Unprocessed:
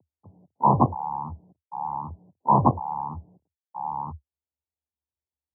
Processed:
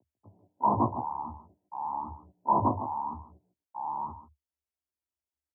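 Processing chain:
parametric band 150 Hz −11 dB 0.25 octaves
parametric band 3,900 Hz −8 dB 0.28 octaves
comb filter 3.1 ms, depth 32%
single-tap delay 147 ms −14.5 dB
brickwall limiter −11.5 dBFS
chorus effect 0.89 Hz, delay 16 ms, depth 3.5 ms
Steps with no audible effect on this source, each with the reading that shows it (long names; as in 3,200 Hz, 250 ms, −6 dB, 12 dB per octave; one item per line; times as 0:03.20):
parametric band 3,900 Hz: nothing at its input above 1,300 Hz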